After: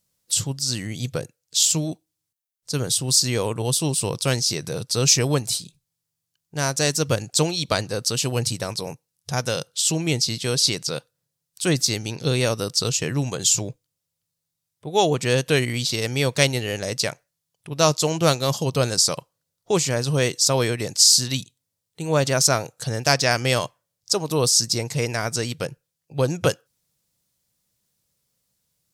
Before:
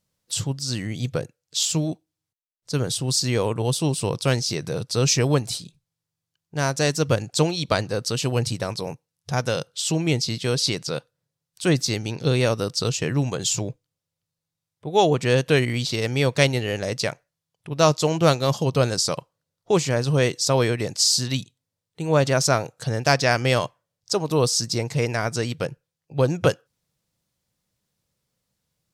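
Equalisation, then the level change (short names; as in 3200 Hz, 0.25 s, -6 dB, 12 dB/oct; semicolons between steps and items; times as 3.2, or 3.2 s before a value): high shelf 4900 Hz +11 dB; -1.5 dB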